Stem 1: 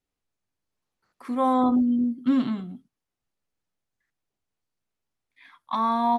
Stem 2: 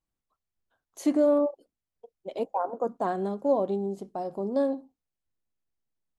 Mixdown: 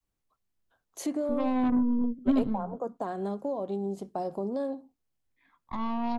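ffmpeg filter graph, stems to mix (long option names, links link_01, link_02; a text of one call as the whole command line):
ffmpeg -i stem1.wav -i stem2.wav -filter_complex "[0:a]highshelf=frequency=2800:gain=-12,aeval=exprs='0.224*(cos(1*acos(clip(val(0)/0.224,-1,1)))-cos(1*PI/2))+0.0355*(cos(3*acos(clip(val(0)/0.224,-1,1)))-cos(3*PI/2))+0.0251*(cos(4*acos(clip(val(0)/0.224,-1,1)))-cos(4*PI/2))+0.00794*(cos(5*acos(clip(val(0)/0.224,-1,1)))-cos(5*PI/2))+0.0316*(cos(6*acos(clip(val(0)/0.224,-1,1)))-cos(6*PI/2))':channel_layout=same,tiltshelf=frequency=650:gain=6,volume=-4dB[link_01];[1:a]alimiter=level_in=0.5dB:limit=-24dB:level=0:latency=1:release=478,volume=-0.5dB,volume=2.5dB[link_02];[link_01][link_02]amix=inputs=2:normalize=0,adynamicequalizer=threshold=0.0141:dfrequency=360:dqfactor=1.1:tfrequency=360:tqfactor=1.1:attack=5:release=100:ratio=0.375:range=2:mode=cutabove:tftype=bell,acrossover=split=440|3000[link_03][link_04][link_05];[link_04]acompressor=threshold=-31dB:ratio=6[link_06];[link_03][link_06][link_05]amix=inputs=3:normalize=0" out.wav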